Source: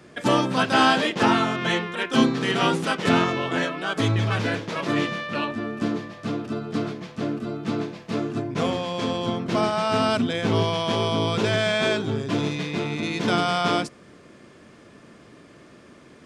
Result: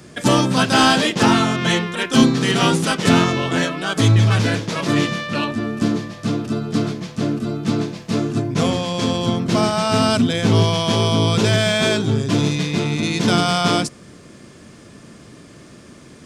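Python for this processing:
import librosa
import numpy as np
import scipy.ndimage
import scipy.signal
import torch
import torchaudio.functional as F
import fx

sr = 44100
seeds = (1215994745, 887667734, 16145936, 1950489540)

p1 = np.clip(x, -10.0 ** (-17.5 / 20.0), 10.0 ** (-17.5 / 20.0))
p2 = x + (p1 * 10.0 ** (-10.5 / 20.0))
p3 = fx.bass_treble(p2, sr, bass_db=7, treble_db=10)
y = p3 * 10.0 ** (1.0 / 20.0)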